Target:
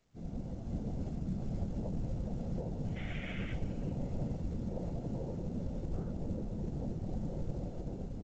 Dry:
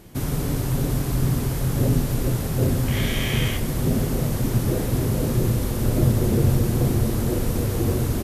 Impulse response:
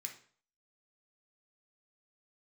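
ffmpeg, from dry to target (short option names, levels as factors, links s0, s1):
-filter_complex "[0:a]bandreject=f=60:t=h:w=6,bandreject=f=120:t=h:w=6,bandreject=f=180:t=h:w=6,bandreject=f=240:t=h:w=6,bandreject=f=300:t=h:w=6,bandreject=f=360:t=h:w=6,bandreject=f=420:t=h:w=6,bandreject=f=480:t=h:w=6,afwtdn=0.0355,adynamicequalizer=threshold=0.0158:dfrequency=150:dqfactor=4.9:tfrequency=150:tqfactor=4.9:attack=5:release=100:ratio=0.375:range=2:mode=cutabove:tftype=bell,dynaudnorm=f=150:g=11:m=3.55,alimiter=limit=0.224:level=0:latency=1:release=85,afftfilt=real='hypot(re,im)*cos(PI*b)':imag='0':win_size=1024:overlap=0.75,aecho=1:1:394|788|1182:0.112|0.0393|0.0137,flanger=delay=9:depth=9.5:regen=-81:speed=0.42:shape=sinusoidal,asplit=2[s0][s1];[s1]adelay=16,volume=0.562[s2];[s0][s2]amix=inputs=2:normalize=0,afftfilt=real='hypot(re,im)*cos(2*PI*random(0))':imag='hypot(re,im)*sin(2*PI*random(1))':win_size=512:overlap=0.75,volume=0.631" -ar 16000 -c:a pcm_mulaw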